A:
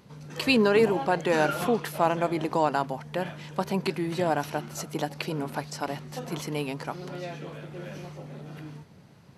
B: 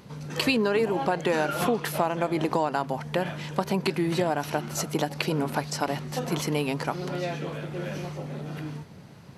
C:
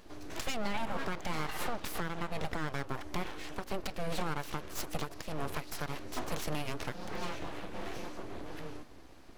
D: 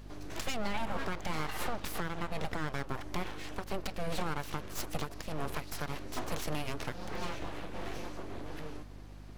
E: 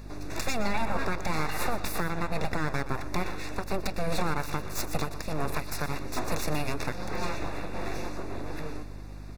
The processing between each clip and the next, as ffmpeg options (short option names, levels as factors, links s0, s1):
-af "acompressor=threshold=0.0447:ratio=6,volume=2"
-af "alimiter=limit=0.15:level=0:latency=1:release=274,aeval=exprs='abs(val(0))':c=same,volume=0.596"
-af "aeval=exprs='val(0)+0.00398*(sin(2*PI*50*n/s)+sin(2*PI*2*50*n/s)/2+sin(2*PI*3*50*n/s)/3+sin(2*PI*4*50*n/s)/4+sin(2*PI*5*50*n/s)/5)':c=same"
-af "asuperstop=centerf=3100:order=20:qfactor=5.1,aecho=1:1:121:0.211,volume=2"